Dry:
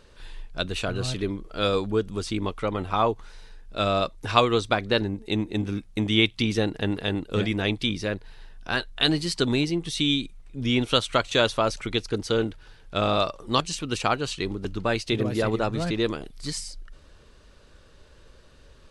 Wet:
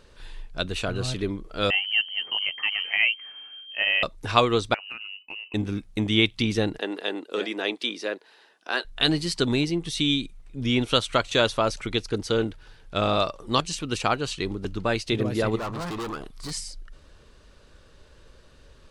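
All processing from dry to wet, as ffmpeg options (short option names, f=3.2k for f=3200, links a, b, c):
-filter_complex "[0:a]asettb=1/sr,asplit=3[a][b][c];[a]atrim=end=1.704[d];[b]atrim=start=1.7:end=4.03,asetpts=PTS-STARTPTS,afade=t=in:d=0.004:c=qsin,afade=t=out:st=2.326:d=0.004:c=qsin,lowpass=f=2.7k:t=q:w=0.5098,lowpass=f=2.7k:t=q:w=0.6013,lowpass=f=2.7k:t=q:w=0.9,lowpass=f=2.7k:t=q:w=2.563,afreqshift=-3200,highpass=95[e];[c]atrim=start=4.026[f];[d][e]acrossfade=d=0.004:c1=hsin:c2=qsin[g];[g][f]acrossfade=d=0.004:c1=qsin:c2=hsin,asettb=1/sr,asplit=3[h][i][j];[h]atrim=end=4.744[k];[i]atrim=start=4.74:end=5.54,asetpts=PTS-STARTPTS,afade=t=in:d=0.004:c=qsin,afade=t=out:st=0.796:d=0.004:c=qsin,agate=range=-33dB:threshold=-32dB:ratio=3:release=100:detection=peak,lowpass=f=2.6k:t=q:w=0.5098,lowpass=f=2.6k:t=q:w=0.6013,lowpass=f=2.6k:t=q:w=0.9,lowpass=f=2.6k:t=q:w=2.563,afreqshift=-3000,acompressor=threshold=-35dB:ratio=5:attack=3.2:release=140:knee=1:detection=peak[l];[j]atrim=start=5.536[m];[k][l]acrossfade=d=0.004:c1=hsin:c2=qsin[n];[n][m]acrossfade=d=0.004:c1=qsin:c2=hsin,asettb=1/sr,asplit=3[o][p][q];[o]atrim=end=6.784[r];[p]atrim=start=6.78:end=8.85,asetpts=PTS-STARTPTS,afade=t=in:d=0.004:c=qsin,afade=t=out:st=2.066:d=0.004:c=qsin,highpass=f=310:w=0.5412,highpass=f=310:w=1.3066,highshelf=f=8.3k:g=-4.5,bandreject=f=2.2k:w=25[s];[q]atrim=start=8.846[t];[r][s]acrossfade=d=0.004:c1=hsin:c2=qsin[u];[u][t]acrossfade=d=0.004:c1=qsin:c2=hsin,asettb=1/sr,asplit=3[v][w][x];[v]atrim=end=15.574[y];[w]atrim=start=15.57:end=16.51,asetpts=PTS-STARTPTS,afade=t=in:d=0.004:c=qsin,afade=t=out:st=0.936:d=0.004:c=qsin,asoftclip=type=hard:threshold=-31dB,equalizer=f=1.1k:w=2.3:g=11[z];[x]atrim=start=16.506[aa];[y][z]acrossfade=d=0.004:c1=hsin:c2=qsin[ab];[ab][aa]acrossfade=d=0.004:c1=qsin:c2=hsin"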